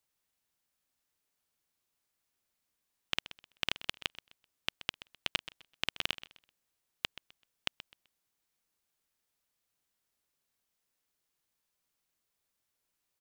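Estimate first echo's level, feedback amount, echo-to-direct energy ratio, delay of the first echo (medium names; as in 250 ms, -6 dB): -15.0 dB, 26%, -14.5 dB, 128 ms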